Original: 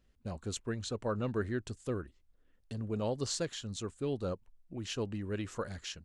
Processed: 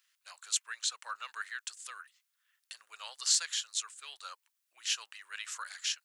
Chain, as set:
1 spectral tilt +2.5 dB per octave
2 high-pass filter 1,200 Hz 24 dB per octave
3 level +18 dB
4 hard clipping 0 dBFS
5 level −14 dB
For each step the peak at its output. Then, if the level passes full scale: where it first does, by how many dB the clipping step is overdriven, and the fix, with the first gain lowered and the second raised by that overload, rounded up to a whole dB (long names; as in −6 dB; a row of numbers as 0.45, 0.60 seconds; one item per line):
−15.5, −14.5, +3.5, 0.0, −14.0 dBFS
step 3, 3.5 dB
step 3 +14 dB, step 5 −10 dB